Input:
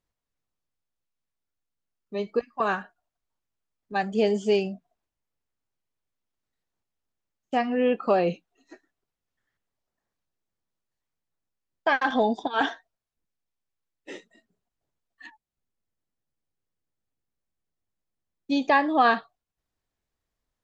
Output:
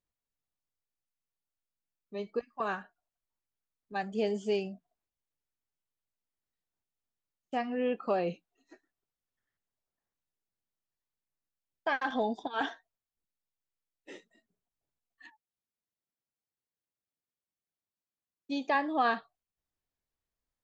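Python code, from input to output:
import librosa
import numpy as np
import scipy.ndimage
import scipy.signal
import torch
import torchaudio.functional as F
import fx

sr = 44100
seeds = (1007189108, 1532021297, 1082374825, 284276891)

y = fx.highpass(x, sr, hz=190.0, slope=6, at=(15.26, 18.75))
y = y * librosa.db_to_amplitude(-8.0)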